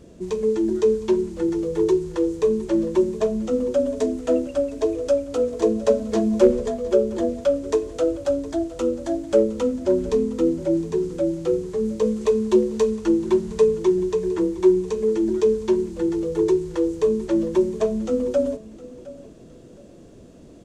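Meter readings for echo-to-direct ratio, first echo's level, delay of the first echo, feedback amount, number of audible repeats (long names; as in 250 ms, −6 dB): −18.0 dB, −18.5 dB, 712 ms, 24%, 2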